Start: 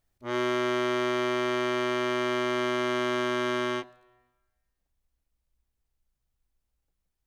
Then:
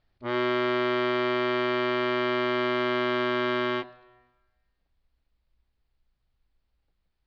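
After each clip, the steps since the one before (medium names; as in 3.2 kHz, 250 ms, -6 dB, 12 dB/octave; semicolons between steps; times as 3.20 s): elliptic low-pass 4.6 kHz, stop band 70 dB; in parallel at 0 dB: peak limiter -27.5 dBFS, peak gain reduction 11.5 dB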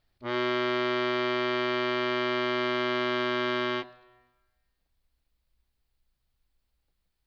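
treble shelf 4.7 kHz +11 dB; trim -2.5 dB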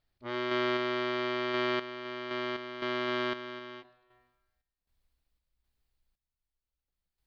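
random-step tremolo 3.9 Hz, depth 80%; trim -1.5 dB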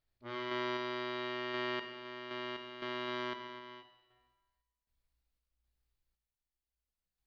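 feedback comb 58 Hz, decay 1.1 s, harmonics all, mix 80%; trim +4.5 dB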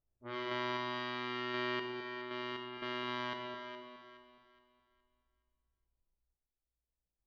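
level-controlled noise filter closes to 740 Hz, open at -35.5 dBFS; echo whose repeats swap between lows and highs 209 ms, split 940 Hz, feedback 56%, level -4.5 dB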